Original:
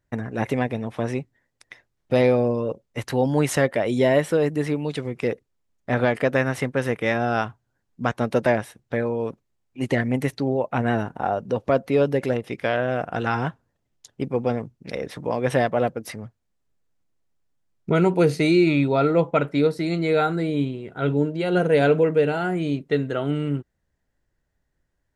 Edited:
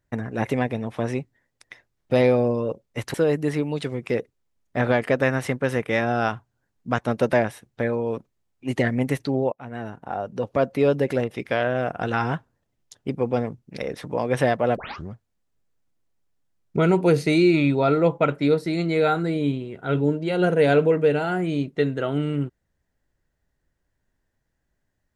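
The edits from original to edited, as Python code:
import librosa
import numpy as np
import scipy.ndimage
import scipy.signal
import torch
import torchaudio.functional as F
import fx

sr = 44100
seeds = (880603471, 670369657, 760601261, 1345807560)

y = fx.edit(x, sr, fx.cut(start_s=3.14, length_s=1.13),
    fx.fade_in_from(start_s=10.65, length_s=1.25, floor_db=-20.5),
    fx.tape_start(start_s=15.9, length_s=0.34), tone=tone)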